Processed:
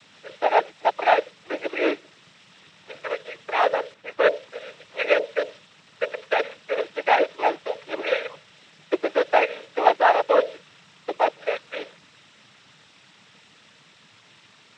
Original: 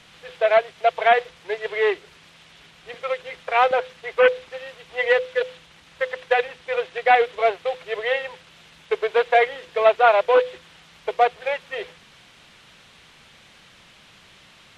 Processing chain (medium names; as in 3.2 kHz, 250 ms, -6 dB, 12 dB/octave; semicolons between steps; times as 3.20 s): noise-vocoded speech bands 12; 3.94–4.34 s: tape noise reduction on one side only decoder only; trim -2 dB